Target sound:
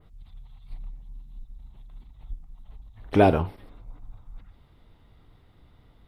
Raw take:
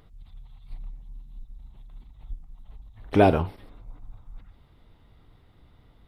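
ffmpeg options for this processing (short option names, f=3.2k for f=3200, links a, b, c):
-af "adynamicequalizer=threshold=0.00178:dfrequency=5000:dqfactor=0.72:tfrequency=5000:tqfactor=0.72:attack=5:release=100:ratio=0.375:range=2.5:mode=cutabove:tftype=bell"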